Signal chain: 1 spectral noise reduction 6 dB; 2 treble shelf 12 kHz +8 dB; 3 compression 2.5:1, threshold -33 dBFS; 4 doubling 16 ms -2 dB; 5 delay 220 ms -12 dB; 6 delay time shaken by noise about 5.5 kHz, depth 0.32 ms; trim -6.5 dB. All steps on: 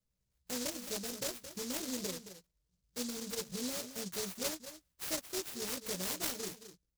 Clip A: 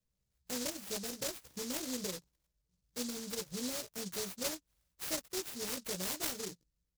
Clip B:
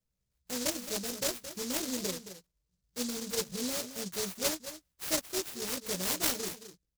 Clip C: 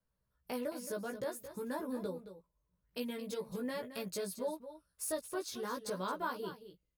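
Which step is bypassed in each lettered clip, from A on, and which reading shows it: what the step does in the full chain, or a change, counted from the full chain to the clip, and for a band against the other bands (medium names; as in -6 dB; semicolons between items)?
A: 5, momentary loudness spread change -2 LU; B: 3, mean gain reduction 3.5 dB; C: 6, 4 kHz band -9.0 dB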